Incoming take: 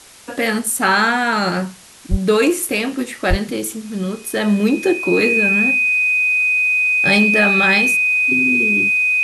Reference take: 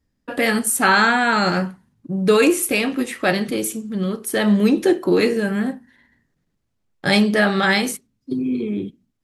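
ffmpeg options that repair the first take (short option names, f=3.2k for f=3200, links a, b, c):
-filter_complex "[0:a]bandreject=f=2.5k:w=30,asplit=3[a][b][c];[a]afade=t=out:st=2.1:d=0.02[d];[b]highpass=f=140:w=0.5412,highpass=f=140:w=1.3066,afade=t=in:st=2.1:d=0.02,afade=t=out:st=2.22:d=0.02[e];[c]afade=t=in:st=2.22:d=0.02[f];[d][e][f]amix=inputs=3:normalize=0,asplit=3[g][h][i];[g]afade=t=out:st=3.29:d=0.02[j];[h]highpass=f=140:w=0.5412,highpass=f=140:w=1.3066,afade=t=in:st=3.29:d=0.02,afade=t=out:st=3.41:d=0.02[k];[i]afade=t=in:st=3.41:d=0.02[l];[j][k][l]amix=inputs=3:normalize=0,afwtdn=0.0089"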